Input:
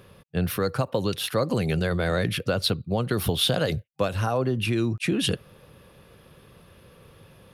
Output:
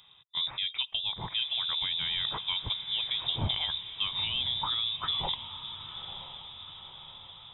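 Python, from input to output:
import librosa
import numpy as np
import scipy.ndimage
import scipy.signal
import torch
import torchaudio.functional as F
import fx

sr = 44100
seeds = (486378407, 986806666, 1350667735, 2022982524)

y = fx.freq_invert(x, sr, carrier_hz=3700)
y = fx.graphic_eq_10(y, sr, hz=(125, 250, 500, 1000, 2000), db=(8, -8, -4, 5, -5))
y = fx.echo_diffused(y, sr, ms=945, feedback_pct=56, wet_db=-11.0)
y = y * 10.0 ** (-6.5 / 20.0)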